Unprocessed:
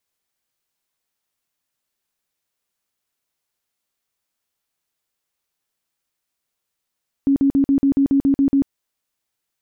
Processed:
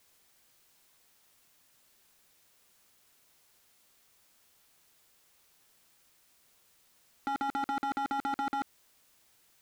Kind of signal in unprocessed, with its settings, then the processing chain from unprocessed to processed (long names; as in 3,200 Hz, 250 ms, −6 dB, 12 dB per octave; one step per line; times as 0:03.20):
tone bursts 276 Hz, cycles 25, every 0.14 s, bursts 10, −12 dBFS
in parallel at +2 dB: compressor whose output falls as the input rises −22 dBFS, ratio −0.5
on the sum: wave folding −18 dBFS
brickwall limiter −26.5 dBFS